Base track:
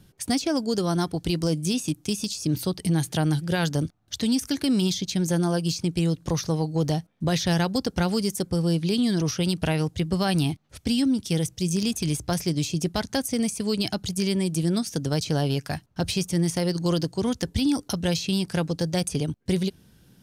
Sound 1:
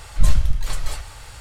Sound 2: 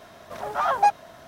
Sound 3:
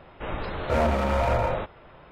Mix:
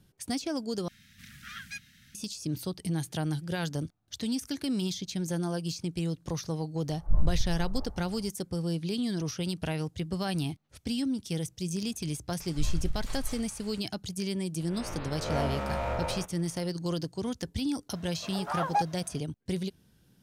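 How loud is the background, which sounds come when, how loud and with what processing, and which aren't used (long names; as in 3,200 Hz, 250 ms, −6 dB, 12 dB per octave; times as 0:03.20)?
base track −8 dB
0:00.88: overwrite with 2 −4 dB + inverse Chebyshev band-stop filter 400–1,000 Hz, stop band 50 dB
0:06.90: mix in 1 −9.5 dB + low-pass filter 1,000 Hz 24 dB per octave
0:12.40: mix in 1 −12 dB + brickwall limiter −7.5 dBFS
0:14.60: mix in 3 −10 dB + peak hold with a rise ahead of every peak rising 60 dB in 0.69 s
0:17.92: mix in 2 −8.5 dB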